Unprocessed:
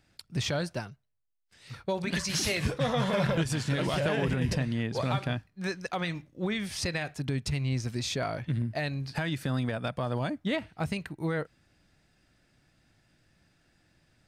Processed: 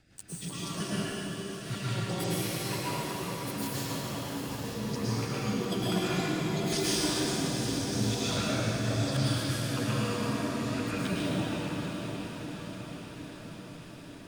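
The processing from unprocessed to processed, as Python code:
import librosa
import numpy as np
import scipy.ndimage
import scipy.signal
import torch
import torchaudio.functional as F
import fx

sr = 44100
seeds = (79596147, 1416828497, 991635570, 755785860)

y = fx.pitch_trill(x, sr, semitones=11.5, every_ms=160)
y = fx.over_compress(y, sr, threshold_db=-37.0, ratio=-0.5)
y = fx.rotary(y, sr, hz=5.0)
y = fx.echo_diffused(y, sr, ms=812, feedback_pct=61, wet_db=-8)
y = fx.rev_plate(y, sr, seeds[0], rt60_s=3.7, hf_ratio=0.8, predelay_ms=95, drr_db=-9.5)
y = F.gain(torch.from_numpy(y), -1.5).numpy()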